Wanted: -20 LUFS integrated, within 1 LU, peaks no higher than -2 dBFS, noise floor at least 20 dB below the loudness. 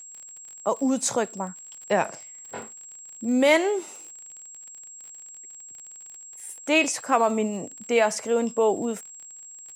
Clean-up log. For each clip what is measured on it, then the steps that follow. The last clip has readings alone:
tick rate 39 per s; steady tone 7.6 kHz; tone level -41 dBFS; loudness -24.5 LUFS; peak level -7.0 dBFS; loudness target -20.0 LUFS
-> de-click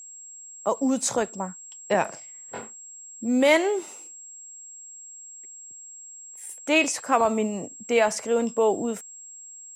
tick rate 0.41 per s; steady tone 7.6 kHz; tone level -41 dBFS
-> band-stop 7.6 kHz, Q 30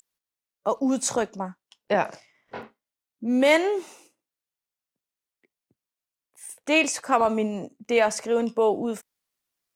steady tone not found; loudness -24.0 LUFS; peak level -6.5 dBFS; loudness target -20.0 LUFS
-> trim +4 dB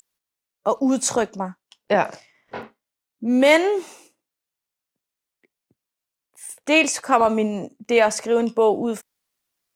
loudness -20.0 LUFS; peak level -3.0 dBFS; noise floor -86 dBFS

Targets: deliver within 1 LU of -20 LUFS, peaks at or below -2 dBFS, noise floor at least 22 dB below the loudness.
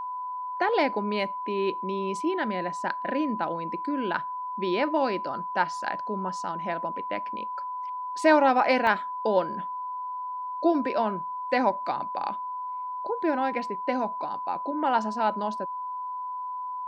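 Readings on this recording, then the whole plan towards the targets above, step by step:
dropouts 1; longest dropout 1.5 ms; steady tone 1 kHz; tone level -31 dBFS; loudness -28.0 LUFS; peak level -8.0 dBFS; loudness target -20.0 LUFS
-> interpolate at 8.87 s, 1.5 ms; band-stop 1 kHz, Q 30; trim +8 dB; peak limiter -2 dBFS

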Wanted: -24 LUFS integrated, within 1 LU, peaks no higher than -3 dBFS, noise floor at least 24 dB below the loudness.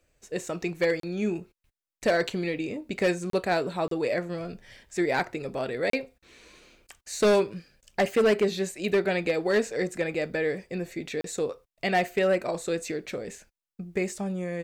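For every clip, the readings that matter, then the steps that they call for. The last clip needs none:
clipped samples 0.8%; clipping level -17.0 dBFS; dropouts 5; longest dropout 33 ms; loudness -28.0 LUFS; peak level -17.0 dBFS; loudness target -24.0 LUFS
-> clip repair -17 dBFS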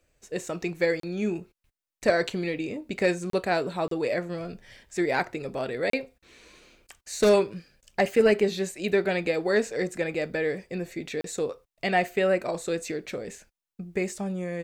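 clipped samples 0.0%; dropouts 5; longest dropout 33 ms
-> interpolate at 1.00/3.30/3.88/5.90/11.21 s, 33 ms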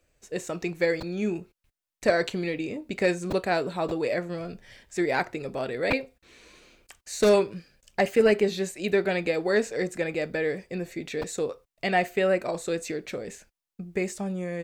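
dropouts 0; loudness -27.5 LUFS; peak level -8.5 dBFS; loudness target -24.0 LUFS
-> trim +3.5 dB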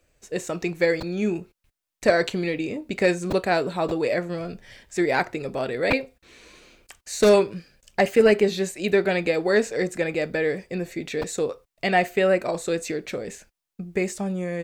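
loudness -24.0 LUFS; peak level -5.0 dBFS; noise floor -85 dBFS

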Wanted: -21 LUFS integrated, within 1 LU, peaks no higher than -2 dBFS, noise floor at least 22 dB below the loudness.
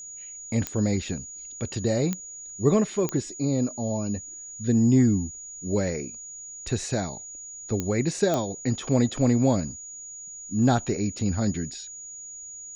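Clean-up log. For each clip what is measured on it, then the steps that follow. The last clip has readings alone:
clicks found 5; steady tone 6.8 kHz; tone level -38 dBFS; loudness -26.0 LUFS; peak level -8.5 dBFS; loudness target -21.0 LUFS
-> de-click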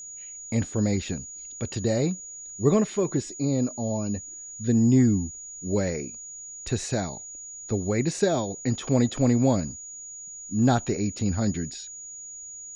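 clicks found 0; steady tone 6.8 kHz; tone level -38 dBFS
-> band-stop 6.8 kHz, Q 30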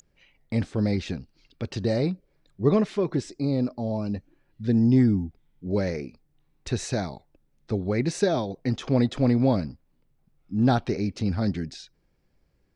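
steady tone not found; loudness -26.0 LUFS; peak level -8.5 dBFS; loudness target -21.0 LUFS
-> trim +5 dB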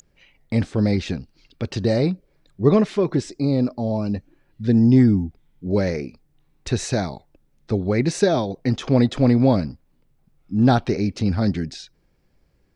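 loudness -21.0 LUFS; peak level -3.5 dBFS; noise floor -64 dBFS

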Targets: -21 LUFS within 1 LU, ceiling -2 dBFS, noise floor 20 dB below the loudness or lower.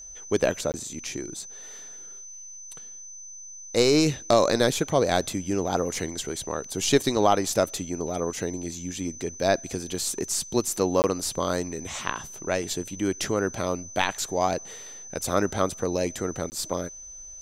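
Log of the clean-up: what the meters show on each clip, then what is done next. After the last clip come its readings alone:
dropouts 3; longest dropout 19 ms; steady tone 6.1 kHz; tone level -40 dBFS; loudness -26.5 LUFS; peak level -5.5 dBFS; loudness target -21.0 LUFS
-> interpolate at 0.72/11.02/16.50 s, 19 ms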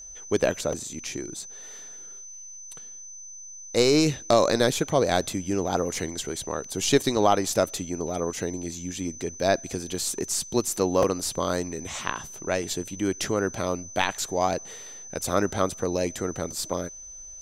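dropouts 0; steady tone 6.1 kHz; tone level -40 dBFS
-> band-stop 6.1 kHz, Q 30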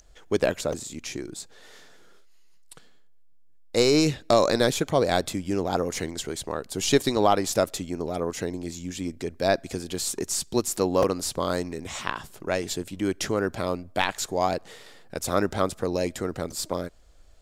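steady tone not found; loudness -26.5 LUFS; peak level -5.5 dBFS; loudness target -21.0 LUFS
-> trim +5.5 dB; peak limiter -2 dBFS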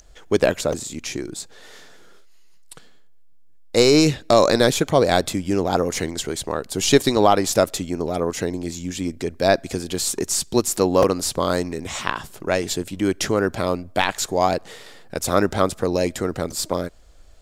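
loudness -21.0 LUFS; peak level -2.0 dBFS; noise floor -44 dBFS

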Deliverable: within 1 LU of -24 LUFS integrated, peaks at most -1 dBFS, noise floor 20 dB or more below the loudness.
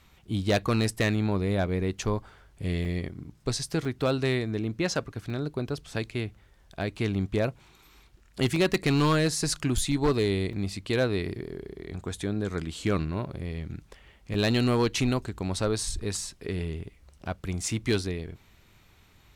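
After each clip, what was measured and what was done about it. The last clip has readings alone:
clipped samples 0.9%; clipping level -18.0 dBFS; dropouts 6; longest dropout 2.5 ms; loudness -29.0 LUFS; peak level -18.0 dBFS; loudness target -24.0 LUFS
-> clip repair -18 dBFS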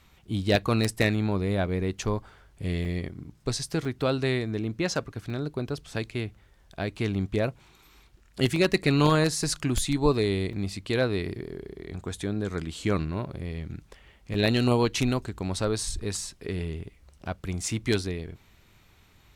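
clipped samples 0.0%; dropouts 6; longest dropout 2.5 ms
-> interpolate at 2.85/3.85/5.30/8.56/10.53/14.34 s, 2.5 ms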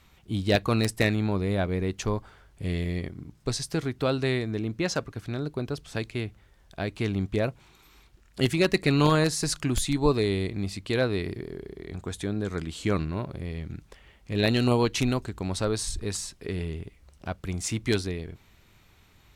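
dropouts 0; loudness -28.0 LUFS; peak level -9.0 dBFS; loudness target -24.0 LUFS
-> trim +4 dB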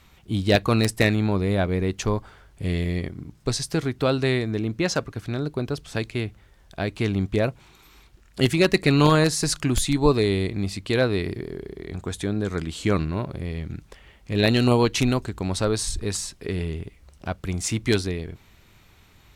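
loudness -24.0 LUFS; peak level -5.0 dBFS; noise floor -55 dBFS

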